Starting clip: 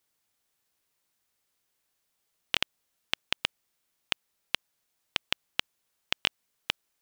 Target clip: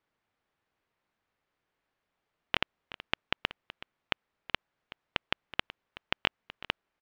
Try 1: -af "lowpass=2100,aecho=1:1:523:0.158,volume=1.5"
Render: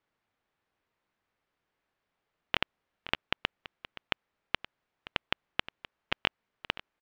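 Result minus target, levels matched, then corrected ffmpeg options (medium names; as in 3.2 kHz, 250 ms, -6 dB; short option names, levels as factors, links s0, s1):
echo 148 ms late
-af "lowpass=2100,aecho=1:1:375:0.158,volume=1.5"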